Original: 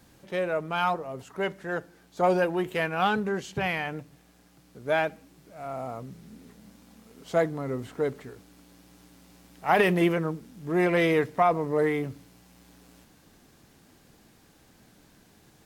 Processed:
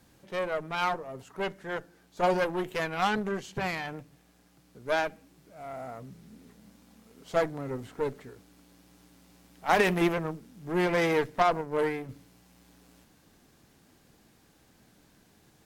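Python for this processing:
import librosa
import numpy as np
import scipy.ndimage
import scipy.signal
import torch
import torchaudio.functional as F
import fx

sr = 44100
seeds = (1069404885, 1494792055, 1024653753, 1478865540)

y = fx.cheby_harmonics(x, sr, harmonics=(3, 8), levels_db=(-19, -23), full_scale_db=-9.0)
y = fx.upward_expand(y, sr, threshold_db=-35.0, expansion=1.5, at=(11.61, 12.09))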